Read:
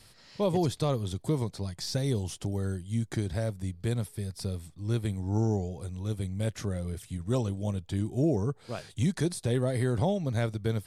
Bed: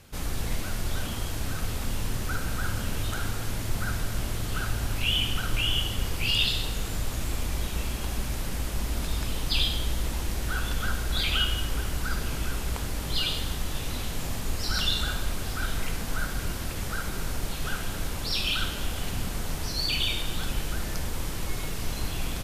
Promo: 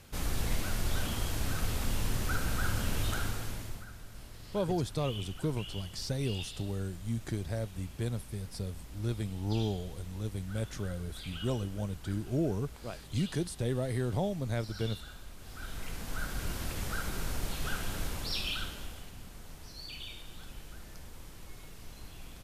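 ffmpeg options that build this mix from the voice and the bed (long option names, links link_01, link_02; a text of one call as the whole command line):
ffmpeg -i stem1.wav -i stem2.wav -filter_complex "[0:a]adelay=4150,volume=-4.5dB[link_01];[1:a]volume=12.5dB,afade=type=out:start_time=3.1:duration=0.76:silence=0.149624,afade=type=in:start_time=15.37:duration=1.26:silence=0.188365,afade=type=out:start_time=18.01:duration=1.09:silence=0.223872[link_02];[link_01][link_02]amix=inputs=2:normalize=0" out.wav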